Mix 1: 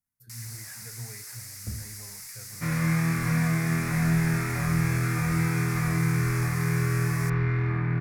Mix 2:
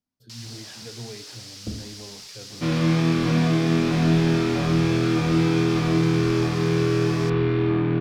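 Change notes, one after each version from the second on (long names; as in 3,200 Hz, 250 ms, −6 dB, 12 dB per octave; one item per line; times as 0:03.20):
master: remove drawn EQ curve 140 Hz 0 dB, 290 Hz −16 dB, 620 Hz −10 dB, 2,100 Hz +4 dB, 3,100 Hz −19 dB, 11,000 Hz +14 dB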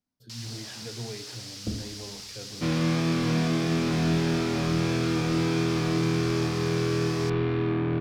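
speech: send on
second sound: send −10.0 dB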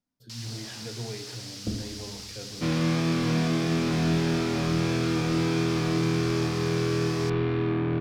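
speech: send +8.0 dB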